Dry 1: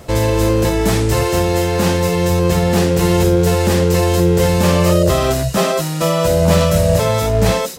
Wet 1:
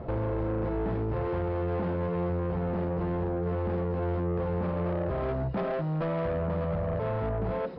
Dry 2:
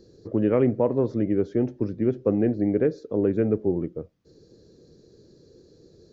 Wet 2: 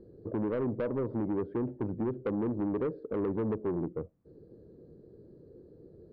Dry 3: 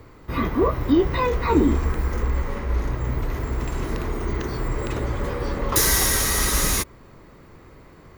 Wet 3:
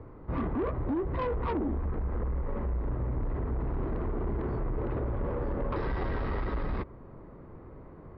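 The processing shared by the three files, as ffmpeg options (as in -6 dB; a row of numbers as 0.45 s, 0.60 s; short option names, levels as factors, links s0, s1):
-af "lowpass=1000,acompressor=threshold=0.0708:ratio=5,aresample=11025,asoftclip=type=tanh:threshold=0.0501,aresample=44100"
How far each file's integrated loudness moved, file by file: -15.5 LU, -9.0 LU, -10.5 LU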